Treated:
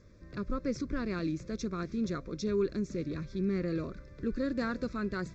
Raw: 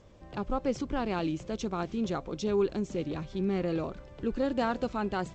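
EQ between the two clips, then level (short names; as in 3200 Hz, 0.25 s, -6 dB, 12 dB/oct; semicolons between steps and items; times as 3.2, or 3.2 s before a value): fixed phaser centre 3000 Hz, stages 6; 0.0 dB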